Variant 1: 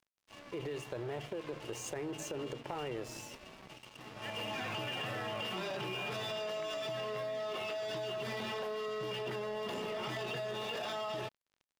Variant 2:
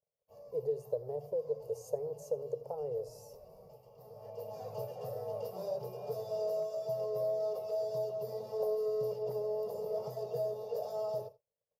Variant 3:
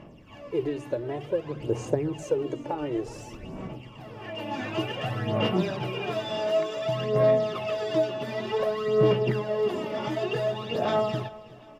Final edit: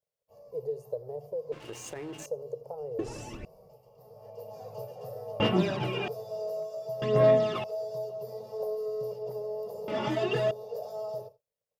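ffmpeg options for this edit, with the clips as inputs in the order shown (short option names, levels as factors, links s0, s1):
-filter_complex "[2:a]asplit=4[s0][s1][s2][s3];[1:a]asplit=6[s4][s5][s6][s7][s8][s9];[s4]atrim=end=1.522[s10];[0:a]atrim=start=1.518:end=2.262[s11];[s5]atrim=start=2.258:end=2.992[s12];[s0]atrim=start=2.988:end=3.452[s13];[s6]atrim=start=3.448:end=5.402[s14];[s1]atrim=start=5.398:end=6.082[s15];[s7]atrim=start=6.078:end=7.022[s16];[s2]atrim=start=7.018:end=7.642[s17];[s8]atrim=start=7.638:end=9.882[s18];[s3]atrim=start=9.878:end=10.512[s19];[s9]atrim=start=10.508[s20];[s10][s11]acrossfade=d=0.004:c1=hsin:c2=hsin[s21];[s21][s12]acrossfade=d=0.004:c1=hsin:c2=hsin[s22];[s22][s13]acrossfade=d=0.004:c1=hsin:c2=hsin[s23];[s23][s14]acrossfade=d=0.004:c1=hsin:c2=hsin[s24];[s24][s15]acrossfade=d=0.004:c1=hsin:c2=hsin[s25];[s25][s16]acrossfade=d=0.004:c1=hsin:c2=hsin[s26];[s26][s17]acrossfade=d=0.004:c1=hsin:c2=hsin[s27];[s27][s18]acrossfade=d=0.004:c1=hsin:c2=hsin[s28];[s28][s19]acrossfade=d=0.004:c1=hsin:c2=hsin[s29];[s29][s20]acrossfade=d=0.004:c1=hsin:c2=hsin"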